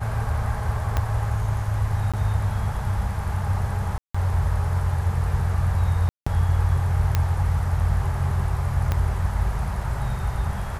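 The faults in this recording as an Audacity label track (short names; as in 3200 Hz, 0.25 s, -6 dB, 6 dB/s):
0.970000	0.970000	pop -10 dBFS
2.120000	2.140000	gap 16 ms
3.980000	4.140000	gap 0.165 s
6.090000	6.260000	gap 0.175 s
7.150000	7.150000	pop -8 dBFS
8.920000	8.920000	pop -11 dBFS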